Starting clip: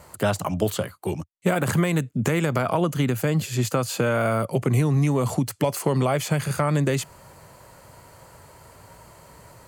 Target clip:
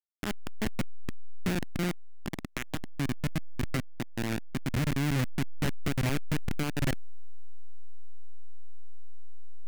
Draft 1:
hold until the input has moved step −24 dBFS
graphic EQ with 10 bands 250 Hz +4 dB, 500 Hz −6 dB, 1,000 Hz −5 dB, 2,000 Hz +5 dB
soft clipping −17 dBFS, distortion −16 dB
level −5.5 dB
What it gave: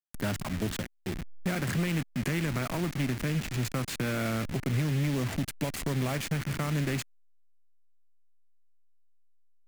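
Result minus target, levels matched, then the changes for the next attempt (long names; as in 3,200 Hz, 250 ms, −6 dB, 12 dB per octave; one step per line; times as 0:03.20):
hold until the input has moved: distortion −20 dB
change: hold until the input has moved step −12.5 dBFS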